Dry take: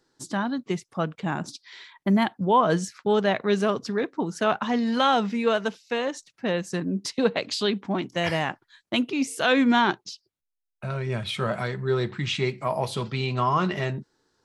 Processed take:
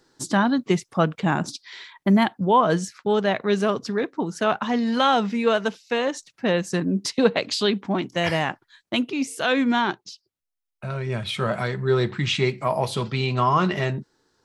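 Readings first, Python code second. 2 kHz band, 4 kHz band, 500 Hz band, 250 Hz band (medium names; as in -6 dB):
+2.0 dB, +2.5 dB, +2.5 dB, +2.5 dB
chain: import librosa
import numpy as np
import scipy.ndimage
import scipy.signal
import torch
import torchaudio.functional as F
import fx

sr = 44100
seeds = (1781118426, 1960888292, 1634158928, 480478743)

y = fx.rider(x, sr, range_db=10, speed_s=2.0)
y = y * librosa.db_to_amplitude(2.0)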